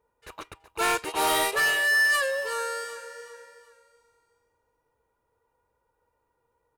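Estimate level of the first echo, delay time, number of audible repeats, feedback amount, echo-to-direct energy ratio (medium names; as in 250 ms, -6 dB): -14.0 dB, 375 ms, 3, 38%, -13.5 dB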